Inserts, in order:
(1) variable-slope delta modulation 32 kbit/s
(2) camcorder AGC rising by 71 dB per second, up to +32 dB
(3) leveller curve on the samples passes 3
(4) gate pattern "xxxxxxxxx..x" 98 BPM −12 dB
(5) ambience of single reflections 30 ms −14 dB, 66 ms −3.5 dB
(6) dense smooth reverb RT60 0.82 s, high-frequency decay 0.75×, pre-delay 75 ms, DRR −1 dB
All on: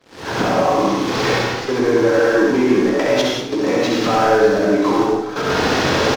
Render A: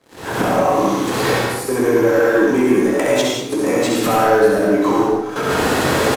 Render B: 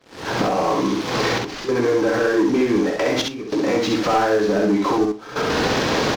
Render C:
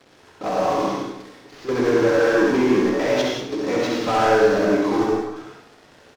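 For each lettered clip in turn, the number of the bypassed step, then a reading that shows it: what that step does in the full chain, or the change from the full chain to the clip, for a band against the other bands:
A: 1, 8 kHz band +3.5 dB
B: 6, echo-to-direct ratio 4.0 dB to −3.0 dB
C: 2, change in crest factor +1.5 dB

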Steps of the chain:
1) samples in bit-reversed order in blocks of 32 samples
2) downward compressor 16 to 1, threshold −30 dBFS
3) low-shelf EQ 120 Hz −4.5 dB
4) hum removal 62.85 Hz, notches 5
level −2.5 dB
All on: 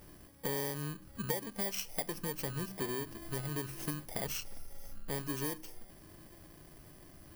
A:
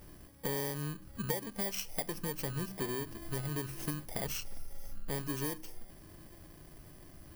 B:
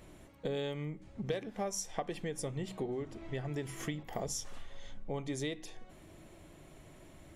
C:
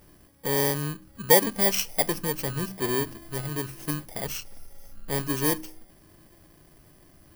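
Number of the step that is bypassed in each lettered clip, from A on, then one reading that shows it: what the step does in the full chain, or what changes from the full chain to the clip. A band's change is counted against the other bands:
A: 3, 125 Hz band +2.0 dB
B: 1, 2 kHz band −3.0 dB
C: 2, average gain reduction 6.0 dB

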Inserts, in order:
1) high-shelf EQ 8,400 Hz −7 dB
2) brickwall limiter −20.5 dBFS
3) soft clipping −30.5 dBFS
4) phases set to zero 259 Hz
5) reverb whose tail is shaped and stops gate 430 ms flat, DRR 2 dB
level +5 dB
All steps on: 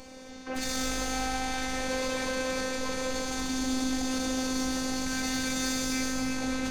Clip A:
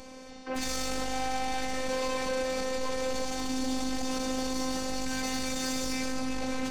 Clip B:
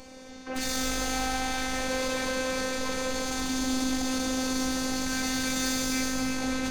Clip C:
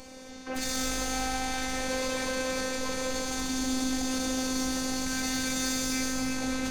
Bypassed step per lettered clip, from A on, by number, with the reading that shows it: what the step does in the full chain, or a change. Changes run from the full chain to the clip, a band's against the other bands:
5, 500 Hz band +4.0 dB
2, average gain reduction 4.0 dB
1, 8 kHz band +2.0 dB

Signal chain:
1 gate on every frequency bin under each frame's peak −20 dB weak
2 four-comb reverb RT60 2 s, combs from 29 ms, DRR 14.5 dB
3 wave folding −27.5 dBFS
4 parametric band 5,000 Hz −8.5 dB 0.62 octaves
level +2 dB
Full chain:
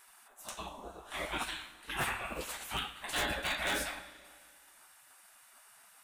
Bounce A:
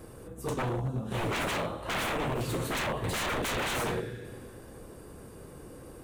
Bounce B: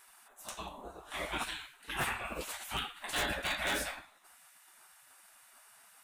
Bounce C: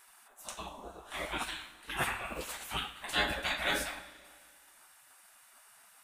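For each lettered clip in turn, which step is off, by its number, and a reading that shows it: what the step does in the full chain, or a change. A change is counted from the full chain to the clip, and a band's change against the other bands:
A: 1, 125 Hz band +12.0 dB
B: 2, change in momentary loudness spread −3 LU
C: 3, distortion level −8 dB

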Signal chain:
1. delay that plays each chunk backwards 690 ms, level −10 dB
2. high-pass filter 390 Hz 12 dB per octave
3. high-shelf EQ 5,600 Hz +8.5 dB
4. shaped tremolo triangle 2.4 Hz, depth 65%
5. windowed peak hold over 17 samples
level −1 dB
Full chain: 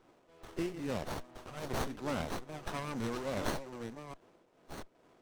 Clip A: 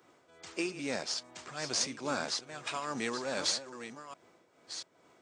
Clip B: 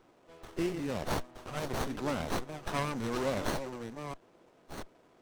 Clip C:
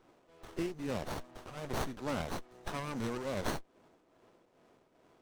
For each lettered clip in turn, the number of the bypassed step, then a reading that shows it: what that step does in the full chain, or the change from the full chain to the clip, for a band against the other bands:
5, change in crest factor +2.0 dB
4, change in integrated loudness +3.5 LU
1, change in momentary loudness spread −5 LU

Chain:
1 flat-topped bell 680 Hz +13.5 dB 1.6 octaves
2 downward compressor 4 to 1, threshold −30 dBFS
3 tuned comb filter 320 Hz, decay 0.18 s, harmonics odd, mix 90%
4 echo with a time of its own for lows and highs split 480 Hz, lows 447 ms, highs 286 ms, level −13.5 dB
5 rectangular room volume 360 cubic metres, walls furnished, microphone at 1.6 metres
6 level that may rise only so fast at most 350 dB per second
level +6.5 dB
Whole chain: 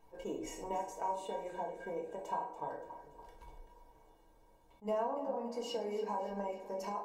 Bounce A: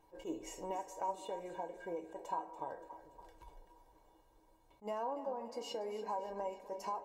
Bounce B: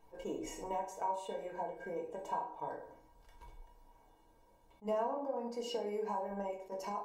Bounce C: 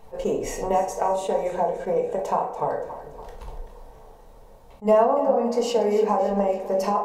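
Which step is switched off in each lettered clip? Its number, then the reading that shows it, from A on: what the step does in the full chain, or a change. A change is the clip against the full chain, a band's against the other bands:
5, 125 Hz band −4.0 dB
4, change in momentary loudness spread −6 LU
3, 4 kHz band −5.0 dB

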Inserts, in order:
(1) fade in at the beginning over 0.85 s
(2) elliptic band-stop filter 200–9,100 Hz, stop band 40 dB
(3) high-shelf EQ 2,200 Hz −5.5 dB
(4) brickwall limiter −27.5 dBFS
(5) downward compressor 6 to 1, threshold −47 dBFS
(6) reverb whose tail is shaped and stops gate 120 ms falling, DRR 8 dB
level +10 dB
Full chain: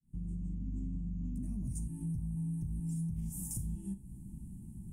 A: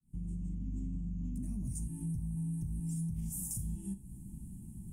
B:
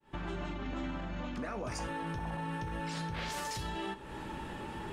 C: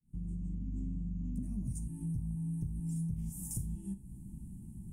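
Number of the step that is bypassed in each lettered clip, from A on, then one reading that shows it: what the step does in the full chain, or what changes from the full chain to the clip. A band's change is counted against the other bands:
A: 3, change in crest factor −1.5 dB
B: 2, change in momentary loudness spread −6 LU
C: 4, change in crest factor +1.5 dB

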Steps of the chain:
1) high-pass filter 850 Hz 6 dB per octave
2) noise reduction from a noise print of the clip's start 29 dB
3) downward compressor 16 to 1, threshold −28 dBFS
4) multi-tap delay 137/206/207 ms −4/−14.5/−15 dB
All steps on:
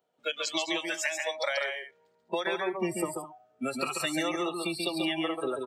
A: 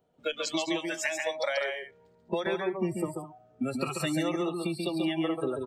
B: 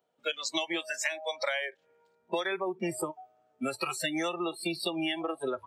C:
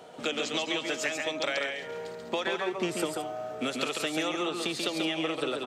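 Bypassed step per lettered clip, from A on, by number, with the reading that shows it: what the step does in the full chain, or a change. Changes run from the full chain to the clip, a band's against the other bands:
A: 1, 125 Hz band +9.5 dB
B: 4, change in crest factor +2.5 dB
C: 2, 4 kHz band +1.5 dB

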